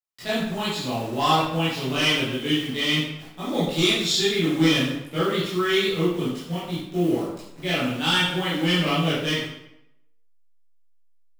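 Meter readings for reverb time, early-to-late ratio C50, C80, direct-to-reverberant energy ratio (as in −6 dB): 0.80 s, 0.0 dB, 4.0 dB, −11.0 dB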